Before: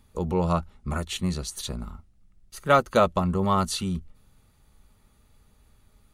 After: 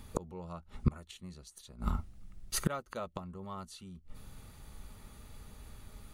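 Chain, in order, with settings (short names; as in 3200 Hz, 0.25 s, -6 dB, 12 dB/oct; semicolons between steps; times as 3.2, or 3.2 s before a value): flipped gate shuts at -24 dBFS, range -29 dB; gain +8.5 dB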